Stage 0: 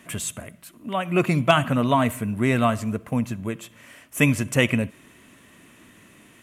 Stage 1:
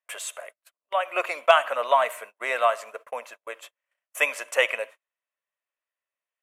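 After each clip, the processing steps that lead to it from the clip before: elliptic high-pass 530 Hz, stop band 80 dB; gate -42 dBFS, range -39 dB; high shelf 3900 Hz -8 dB; gain +2.5 dB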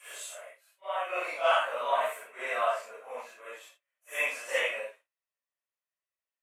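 phase scrambler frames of 0.2 s; gain -6 dB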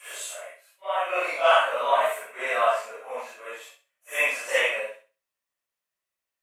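flutter echo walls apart 11.1 m, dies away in 0.33 s; gain +6 dB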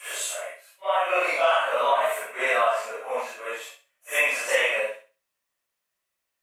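compressor 5:1, threshold -24 dBFS, peak gain reduction 9.5 dB; gain +5.5 dB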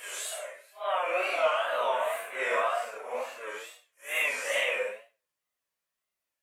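phase scrambler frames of 0.2 s; wow and flutter 110 cents; gain -5.5 dB

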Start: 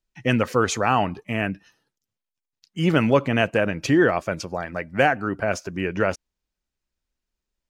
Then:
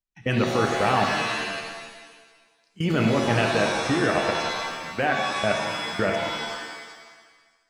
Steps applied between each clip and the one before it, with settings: level quantiser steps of 23 dB; shimmer reverb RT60 1.4 s, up +7 st, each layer -2 dB, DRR 2.5 dB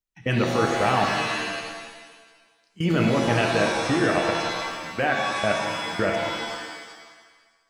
reverb RT60 1.4 s, pre-delay 3 ms, DRR 11.5 dB

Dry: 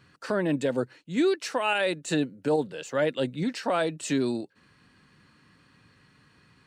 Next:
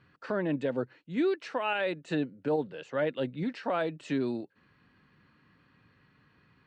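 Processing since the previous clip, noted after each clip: LPF 3000 Hz 12 dB/oct; gain -4 dB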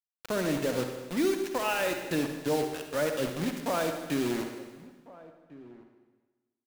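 requantised 6-bit, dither none; outdoor echo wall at 240 m, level -19 dB; reverb RT60 1.3 s, pre-delay 49 ms, DRR 5 dB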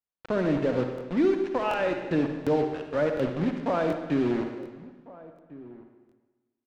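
tape spacing loss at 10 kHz 33 dB; crackling interface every 0.73 s, samples 1024, repeat, from 0.96; gain +5.5 dB

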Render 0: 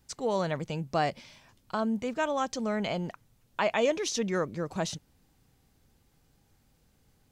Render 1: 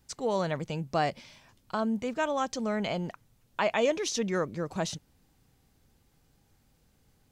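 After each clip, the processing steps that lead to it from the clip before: nothing audible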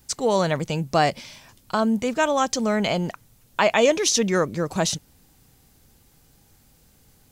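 high shelf 5800 Hz +9 dB; gain +8 dB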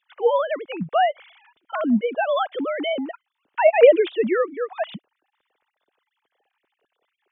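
sine-wave speech; gain +1.5 dB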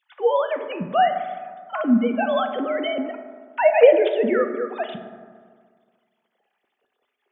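reverb RT60 1.8 s, pre-delay 4 ms, DRR 6 dB; gain -1 dB

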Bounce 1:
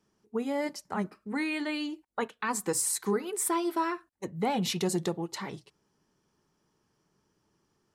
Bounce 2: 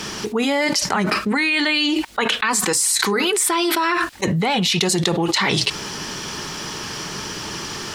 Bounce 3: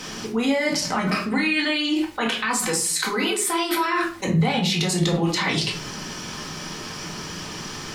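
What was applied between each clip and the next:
de-esser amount 45%; bell 3400 Hz +13.5 dB 2.8 oct; fast leveller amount 100%; gain -1 dB
shoebox room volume 300 m³, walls furnished, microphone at 2 m; gain -7.5 dB

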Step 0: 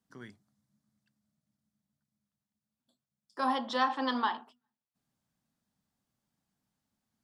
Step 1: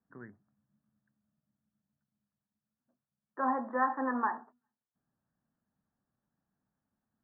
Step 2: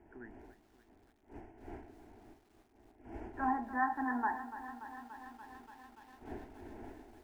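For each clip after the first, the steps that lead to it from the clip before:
Chebyshev low-pass 1800 Hz, order 6
wind noise 480 Hz -51 dBFS; fixed phaser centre 790 Hz, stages 8; lo-fi delay 0.289 s, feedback 80%, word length 10-bit, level -13 dB

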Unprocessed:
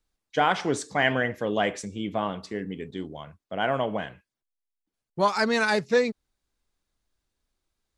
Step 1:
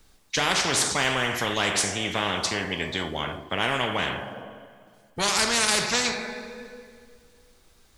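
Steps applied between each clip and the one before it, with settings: two-slope reverb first 0.41 s, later 1.9 s, from -20 dB, DRR 7.5 dB; spectral compressor 4:1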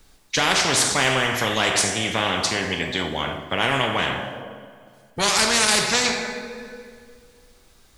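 non-linear reverb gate 0.35 s falling, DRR 8.5 dB; gain +3.5 dB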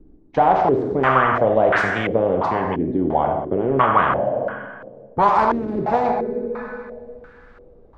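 in parallel at -1 dB: compressor, threshold -29 dBFS, peak gain reduction 13.5 dB; on the sum: stepped low-pass 2.9 Hz 320–1500 Hz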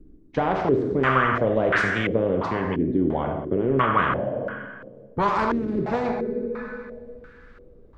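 bell 780 Hz -11.5 dB 0.9 oct

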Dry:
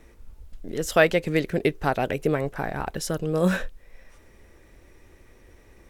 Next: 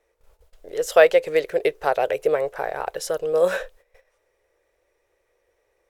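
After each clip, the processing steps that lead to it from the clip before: gate -42 dBFS, range -14 dB; resonant low shelf 340 Hz -13 dB, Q 3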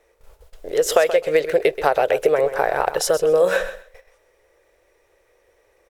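compressor 10:1, threshold -21 dBFS, peak gain reduction 13.5 dB; feedback echo 0.129 s, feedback 18%, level -12 dB; gain +8.5 dB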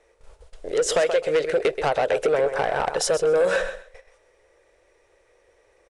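soft clip -14.5 dBFS, distortion -12 dB; downsampling 22050 Hz

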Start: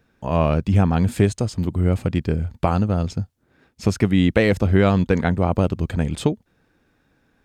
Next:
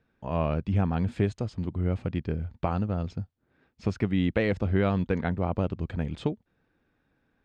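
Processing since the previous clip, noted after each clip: LPF 3800 Hz 12 dB/oct; gain -8.5 dB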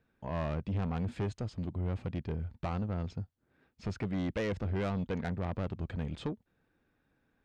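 soft clip -25.5 dBFS, distortion -10 dB; gain -3 dB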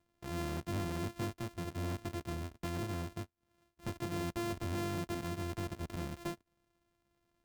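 sample sorter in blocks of 128 samples; gain -4 dB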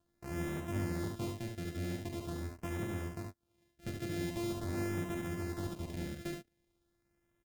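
LFO notch sine 0.44 Hz 950–4600 Hz; on a send: early reflections 44 ms -9 dB, 72 ms -4.5 dB; on the sum: gain -1 dB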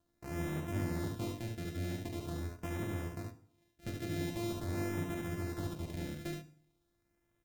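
FDN reverb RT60 0.55 s, low-frequency decay 1.1×, high-frequency decay 0.85×, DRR 9 dB

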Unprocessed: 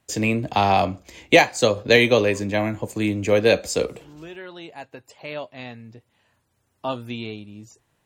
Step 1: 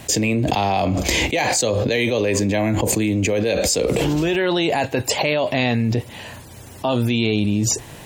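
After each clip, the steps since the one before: bell 1300 Hz -6.5 dB 0.7 oct; fast leveller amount 100%; gain -9 dB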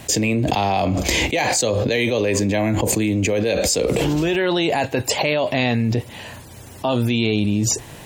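nothing audible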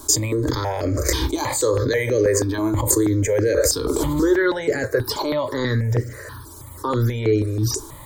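fixed phaser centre 730 Hz, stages 6; shoebox room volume 210 m³, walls furnished, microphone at 0.33 m; step phaser 6.2 Hz 510–3600 Hz; gain +6 dB

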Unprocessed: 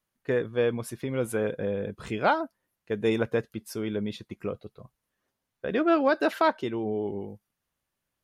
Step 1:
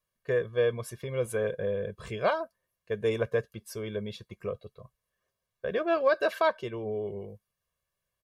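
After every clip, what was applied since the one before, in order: comb 1.8 ms, depth 81%; gain -4.5 dB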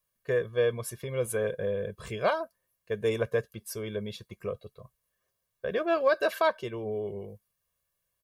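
high shelf 8900 Hz +10.5 dB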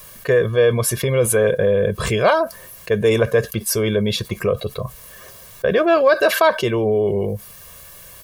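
fast leveller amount 50%; gain +9 dB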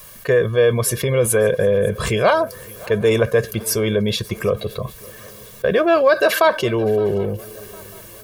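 swung echo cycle 0.756 s, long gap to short 3:1, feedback 42%, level -22.5 dB

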